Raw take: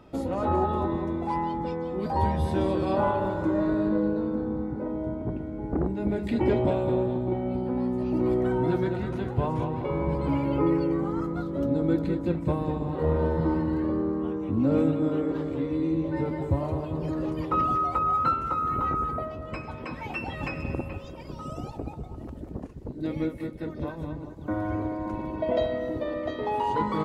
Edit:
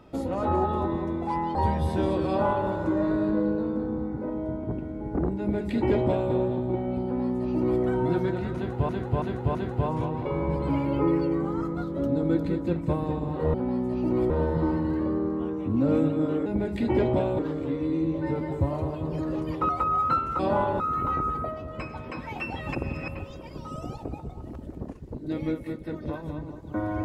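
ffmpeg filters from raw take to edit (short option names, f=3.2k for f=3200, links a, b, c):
-filter_complex "[0:a]asplit=14[a][b][c][d][e][f][g][h][i][j][k][l][m][n];[a]atrim=end=1.552[o];[b]atrim=start=2.128:end=9.472[p];[c]atrim=start=9.138:end=9.472[q];[d]atrim=start=9.138:end=9.472[r];[e]atrim=start=9.138:end=13.132[s];[f]atrim=start=7.628:end=8.392[t];[g]atrim=start=13.128:end=15.292[u];[h]atrim=start=5.968:end=6.902[v];[i]atrim=start=15.288:end=17.592[w];[j]atrim=start=17.838:end=18.542[x];[k]atrim=start=2.858:end=3.272[y];[l]atrim=start=18.538:end=20.492[z];[m]atrim=start=20.488:end=20.822,asetpts=PTS-STARTPTS,areverse[aa];[n]atrim=start=20.818[ab];[o][p]acrossfade=d=0.004:c1=hsin:c2=hsin[ac];[ac][q]acrossfade=d=0.004:c1=hsin:c2=hsin[ad];[ad][r]acrossfade=d=0.004:c1=hsin:c2=hsin[ae];[ae][s]acrossfade=d=0.004:c1=hsin:c2=hsin[af];[af][t]acrossfade=d=0.004:c1=hsin:c2=hsin[ag];[ag][u]acrossfade=d=0.004:c1=hsin:c2=hsin[ah];[ah][v]acrossfade=d=0.004:c1=hsin:c2=hsin[ai];[ai][w]acrossfade=d=0.004:c1=hsin:c2=hsin[aj];[aj][x]acrossfade=d=0.004:c1=hsin:c2=hsin[ak];[ak][y]acrossfade=d=0.004:c1=hsin:c2=hsin[al];[al][z]acrossfade=d=0.004:c1=hsin:c2=hsin[am];[am][aa]acrossfade=d=0.004:c1=hsin:c2=hsin[an];[an][ab]acrossfade=d=0.004:c1=hsin:c2=hsin"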